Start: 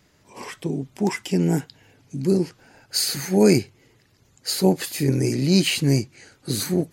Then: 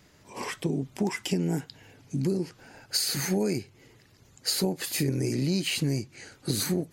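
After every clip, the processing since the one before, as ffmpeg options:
ffmpeg -i in.wav -af "acompressor=threshold=-25dB:ratio=12,volume=1.5dB" out.wav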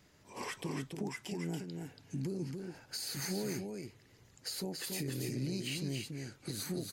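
ffmpeg -i in.wav -af "alimiter=limit=-23dB:level=0:latency=1:release=339,aecho=1:1:282:0.562,volume=-6.5dB" out.wav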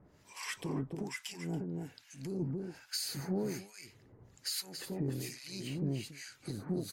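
ffmpeg -i in.wav -filter_complex "[0:a]asplit=2[link_01][link_02];[link_02]asoftclip=type=tanh:threshold=-35.5dB,volume=-3.5dB[link_03];[link_01][link_03]amix=inputs=2:normalize=0,acrossover=split=1200[link_04][link_05];[link_04]aeval=exprs='val(0)*(1-1/2+1/2*cos(2*PI*1.2*n/s))':channel_layout=same[link_06];[link_05]aeval=exprs='val(0)*(1-1/2-1/2*cos(2*PI*1.2*n/s))':channel_layout=same[link_07];[link_06][link_07]amix=inputs=2:normalize=0,volume=1dB" out.wav

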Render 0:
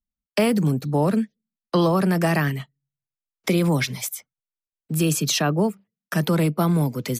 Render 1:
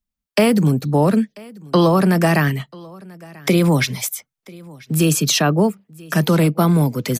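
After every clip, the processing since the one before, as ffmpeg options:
ffmpeg -i in.wav -af "aecho=1:1:989:0.0668,volume=5dB" out.wav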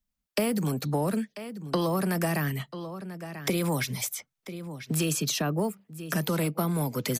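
ffmpeg -i in.wav -filter_complex "[0:a]acrossover=split=510|7800[link_01][link_02][link_03];[link_01]acompressor=threshold=-29dB:ratio=4[link_04];[link_02]acompressor=threshold=-32dB:ratio=4[link_05];[link_03]acompressor=threshold=-36dB:ratio=4[link_06];[link_04][link_05][link_06]amix=inputs=3:normalize=0,asoftclip=type=tanh:threshold=-13.5dB" out.wav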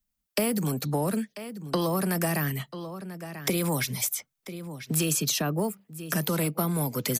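ffmpeg -i in.wav -af "highshelf=frequency=7600:gain=7" out.wav

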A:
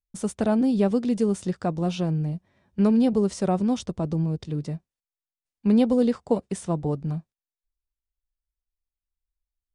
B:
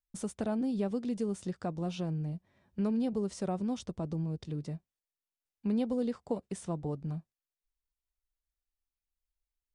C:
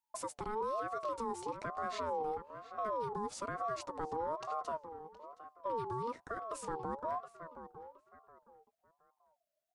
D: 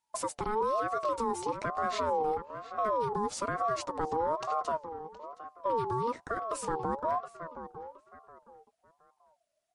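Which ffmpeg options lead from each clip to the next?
ffmpeg -i in.wav -af "acompressor=threshold=-37dB:ratio=1.5,volume=-4dB" out.wav
ffmpeg -i in.wav -filter_complex "[0:a]asplit=2[link_01][link_02];[link_02]adelay=719,lowpass=frequency=2900:poles=1,volume=-14.5dB,asplit=2[link_03][link_04];[link_04]adelay=719,lowpass=frequency=2900:poles=1,volume=0.28,asplit=2[link_05][link_06];[link_06]adelay=719,lowpass=frequency=2900:poles=1,volume=0.28[link_07];[link_01][link_03][link_05][link_07]amix=inputs=4:normalize=0,alimiter=level_in=7dB:limit=-24dB:level=0:latency=1:release=96,volume=-7dB,aeval=exprs='val(0)*sin(2*PI*770*n/s+770*0.2/1.1*sin(2*PI*1.1*n/s))':channel_layout=same,volume=2.5dB" out.wav
ffmpeg -i in.wav -af "volume=7.5dB" -ar 44100 -c:a libmp3lame -b:a 48k out.mp3

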